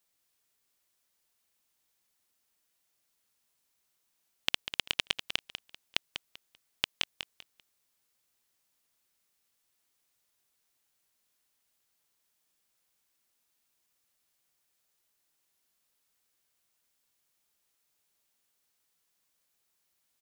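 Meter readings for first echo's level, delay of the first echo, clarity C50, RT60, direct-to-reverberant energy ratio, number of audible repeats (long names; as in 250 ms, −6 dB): −9.5 dB, 195 ms, no reverb audible, no reverb audible, no reverb audible, 3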